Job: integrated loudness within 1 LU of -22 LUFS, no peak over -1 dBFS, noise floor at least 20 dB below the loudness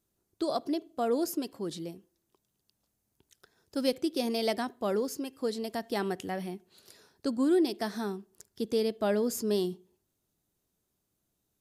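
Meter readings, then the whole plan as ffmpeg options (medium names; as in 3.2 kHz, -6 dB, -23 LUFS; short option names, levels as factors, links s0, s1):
loudness -31.5 LUFS; peak level -15.0 dBFS; loudness target -22.0 LUFS
-> -af "volume=2.99"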